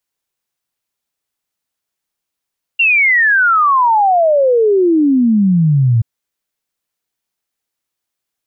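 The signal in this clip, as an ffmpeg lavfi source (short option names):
-f lavfi -i "aevalsrc='0.398*clip(min(t,3.23-t)/0.01,0,1)*sin(2*PI*2800*3.23/log(110/2800)*(exp(log(110/2800)*t/3.23)-1))':d=3.23:s=44100"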